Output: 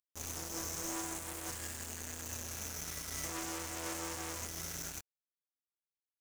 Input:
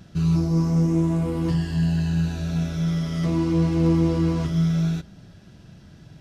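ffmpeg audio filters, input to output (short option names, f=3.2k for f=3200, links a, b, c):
-filter_complex "[0:a]firequalizer=gain_entry='entry(110,0);entry(180,-29);entry(280,-6);entry(600,-12);entry(2200,-9);entry(3900,-29);entry(6200,3)':delay=0.05:min_phase=1,acrossover=split=470|3000[a][b][c];[a]acompressor=threshold=-29dB:ratio=6[d];[d][b][c]amix=inputs=3:normalize=0,volume=31.5dB,asoftclip=hard,volume=-31.5dB,tiltshelf=f=970:g=-8.5,acrusher=bits=5:mix=0:aa=0.5,volume=1dB"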